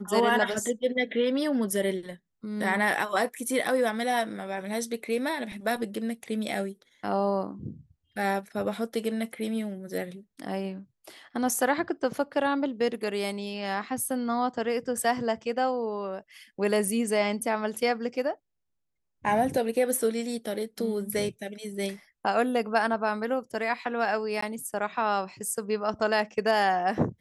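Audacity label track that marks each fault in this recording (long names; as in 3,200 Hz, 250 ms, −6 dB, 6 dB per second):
24.410000	24.420000	drop-out 14 ms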